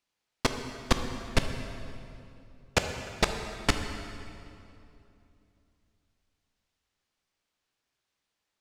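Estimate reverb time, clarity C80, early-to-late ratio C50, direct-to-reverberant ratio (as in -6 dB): 2.7 s, 7.5 dB, 6.5 dB, 5.5 dB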